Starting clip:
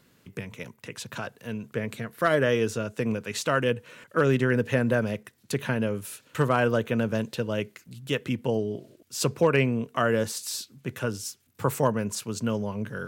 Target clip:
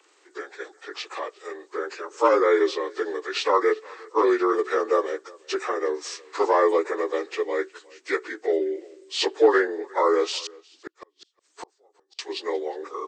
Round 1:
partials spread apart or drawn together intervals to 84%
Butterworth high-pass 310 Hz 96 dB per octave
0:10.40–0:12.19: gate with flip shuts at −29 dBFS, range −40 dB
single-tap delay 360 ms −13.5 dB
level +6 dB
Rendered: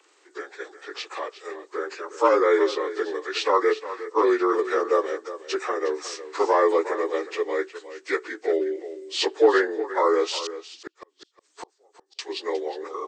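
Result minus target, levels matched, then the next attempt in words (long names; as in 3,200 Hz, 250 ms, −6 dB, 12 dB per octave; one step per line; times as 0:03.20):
echo-to-direct +11 dB
partials spread apart or drawn together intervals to 84%
Butterworth high-pass 310 Hz 96 dB per octave
0:10.40–0:12.19: gate with flip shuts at −29 dBFS, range −40 dB
single-tap delay 360 ms −24.5 dB
level +6 dB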